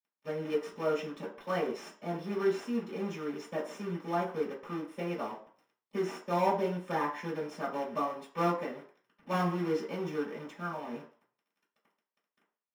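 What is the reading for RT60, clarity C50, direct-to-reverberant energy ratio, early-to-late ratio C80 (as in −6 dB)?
0.45 s, 8.0 dB, −15.0 dB, 12.5 dB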